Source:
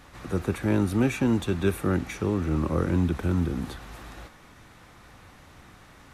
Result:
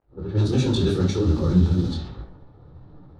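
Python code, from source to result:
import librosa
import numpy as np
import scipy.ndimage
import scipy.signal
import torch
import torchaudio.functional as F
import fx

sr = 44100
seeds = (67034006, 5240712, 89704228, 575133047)

p1 = fx.fade_in_head(x, sr, length_s=1.77)
p2 = fx.rotary(p1, sr, hz=7.5)
p3 = fx.air_absorb(p2, sr, metres=120.0)
p4 = fx.level_steps(p3, sr, step_db=11)
p5 = p3 + (p4 * librosa.db_to_amplitude(1.0))
p6 = fx.high_shelf_res(p5, sr, hz=3100.0, db=10.0, q=3.0)
p7 = fx.room_shoebox(p6, sr, seeds[0], volume_m3=3400.0, walls='furnished', distance_m=4.2)
p8 = fx.stretch_vocoder(p7, sr, factor=0.52)
p9 = fx.rider(p8, sr, range_db=3, speed_s=0.5)
p10 = fx.dmg_crackle(p9, sr, seeds[1], per_s=240.0, level_db=-46.0)
p11 = fx.env_lowpass(p10, sr, base_hz=650.0, full_db=-17.0)
p12 = fx.detune_double(p11, sr, cents=47)
y = p12 * librosa.db_to_amplitude(3.0)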